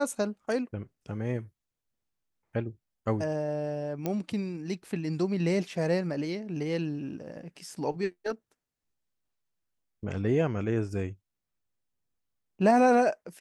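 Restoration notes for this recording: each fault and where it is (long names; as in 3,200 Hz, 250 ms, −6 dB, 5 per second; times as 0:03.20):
0:04.06: click −17 dBFS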